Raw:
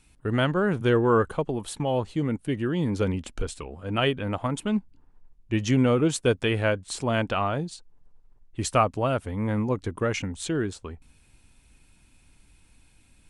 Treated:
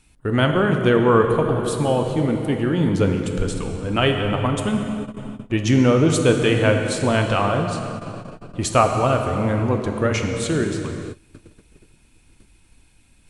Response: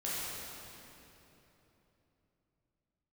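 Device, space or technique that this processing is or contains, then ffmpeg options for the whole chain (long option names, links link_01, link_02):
keyed gated reverb: -filter_complex "[0:a]asplit=3[link_01][link_02][link_03];[1:a]atrim=start_sample=2205[link_04];[link_02][link_04]afir=irnorm=-1:irlink=0[link_05];[link_03]apad=whole_len=586135[link_06];[link_05][link_06]sidechaingate=range=-27dB:threshold=-52dB:ratio=16:detection=peak,volume=-6dB[link_07];[link_01][link_07]amix=inputs=2:normalize=0,volume=2.5dB"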